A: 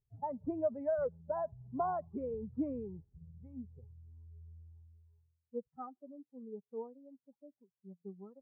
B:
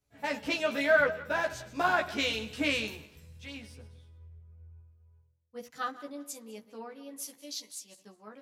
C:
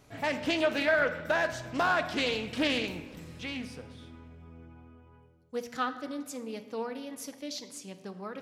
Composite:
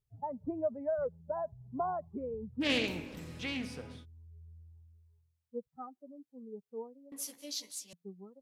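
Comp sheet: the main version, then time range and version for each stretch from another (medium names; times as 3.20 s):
A
2.65–4.01 s: from C, crossfade 0.10 s
7.12–7.93 s: from B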